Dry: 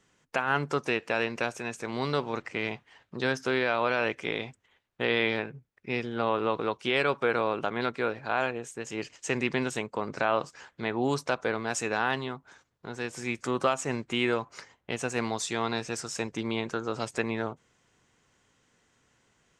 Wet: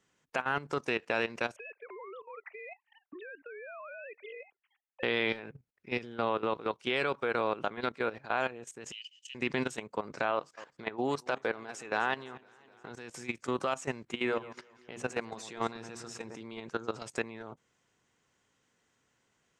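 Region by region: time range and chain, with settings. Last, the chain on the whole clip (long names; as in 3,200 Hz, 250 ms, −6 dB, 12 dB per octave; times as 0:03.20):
0:01.56–0:05.03: three sine waves on the formant tracks + transient designer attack +8 dB, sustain −6 dB + downward compressor 16 to 1, threshold −29 dBFS
0:08.92–0:09.35: four-pole ladder high-pass 2,900 Hz, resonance 90% + comb filter 7.1 ms, depth 37%
0:10.31–0:12.91: bass and treble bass −5 dB, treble −5 dB + feedback echo with a swinging delay time 257 ms, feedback 70%, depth 101 cents, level −20 dB
0:14.14–0:16.41: high-shelf EQ 4,000 Hz −7.5 dB + mains-hum notches 60/120/180/240/300/360 Hz + delay that swaps between a low-pass and a high-pass 113 ms, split 1,700 Hz, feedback 59%, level −12 dB
whole clip: low-shelf EQ 77 Hz −8 dB; output level in coarse steps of 15 dB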